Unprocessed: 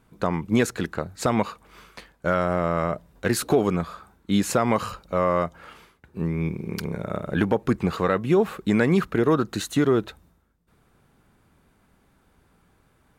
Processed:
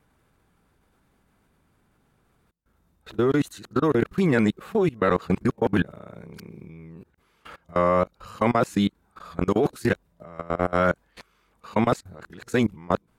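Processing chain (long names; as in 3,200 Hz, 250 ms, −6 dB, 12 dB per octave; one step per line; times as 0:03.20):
played backwards from end to start
output level in coarse steps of 23 dB
level +3.5 dB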